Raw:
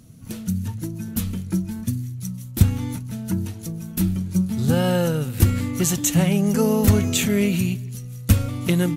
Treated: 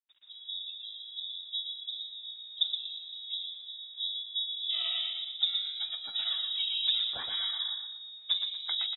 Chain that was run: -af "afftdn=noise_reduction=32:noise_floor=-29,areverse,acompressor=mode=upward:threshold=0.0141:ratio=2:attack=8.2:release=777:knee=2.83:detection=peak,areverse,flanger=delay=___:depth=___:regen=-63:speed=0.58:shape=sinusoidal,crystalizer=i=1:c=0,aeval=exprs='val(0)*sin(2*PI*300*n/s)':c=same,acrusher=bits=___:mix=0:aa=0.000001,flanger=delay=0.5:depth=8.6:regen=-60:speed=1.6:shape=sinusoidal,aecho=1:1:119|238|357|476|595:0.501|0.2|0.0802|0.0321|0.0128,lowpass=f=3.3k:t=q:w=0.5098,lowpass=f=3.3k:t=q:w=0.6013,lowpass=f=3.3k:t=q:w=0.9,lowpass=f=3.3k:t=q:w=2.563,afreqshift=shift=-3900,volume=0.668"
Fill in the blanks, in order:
9.3, 6.7, 9